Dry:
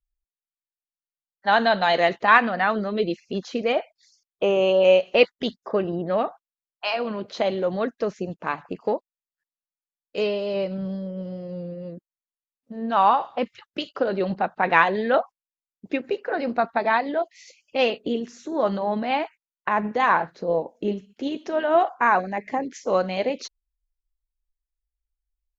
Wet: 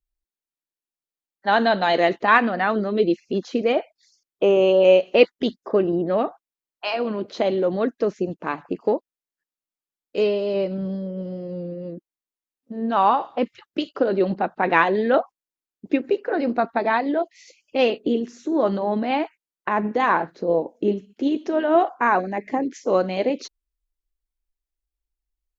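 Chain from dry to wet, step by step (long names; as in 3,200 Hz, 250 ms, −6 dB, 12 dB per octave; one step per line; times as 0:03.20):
parametric band 320 Hz +8.5 dB 1.1 octaves
level −1 dB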